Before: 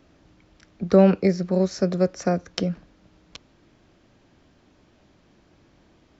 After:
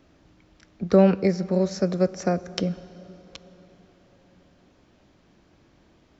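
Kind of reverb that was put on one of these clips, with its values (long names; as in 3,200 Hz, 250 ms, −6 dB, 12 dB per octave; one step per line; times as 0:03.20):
dense smooth reverb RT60 5 s, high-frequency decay 0.55×, DRR 17.5 dB
level −1 dB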